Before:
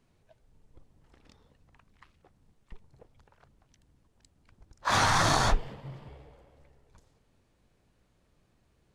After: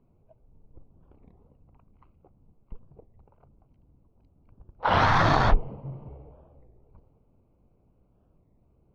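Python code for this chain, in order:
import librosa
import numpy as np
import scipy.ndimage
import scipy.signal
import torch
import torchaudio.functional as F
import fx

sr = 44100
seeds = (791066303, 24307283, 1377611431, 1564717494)

y = fx.wiener(x, sr, points=25)
y = fx.air_absorb(y, sr, metres=280.0)
y = fx.record_warp(y, sr, rpm=33.33, depth_cents=250.0)
y = F.gain(torch.from_numpy(y), 5.5).numpy()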